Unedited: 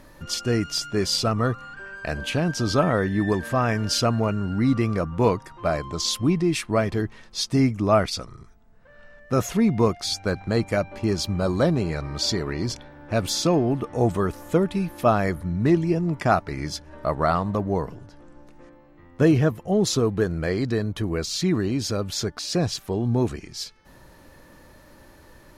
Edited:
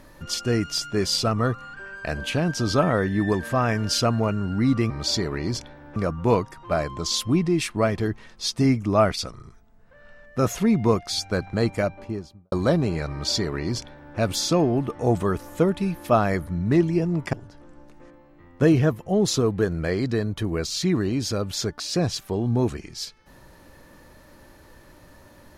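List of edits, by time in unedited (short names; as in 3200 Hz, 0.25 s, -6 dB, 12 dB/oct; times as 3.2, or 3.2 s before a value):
10.64–11.46 studio fade out
12.05–13.11 copy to 4.9
16.27–17.92 cut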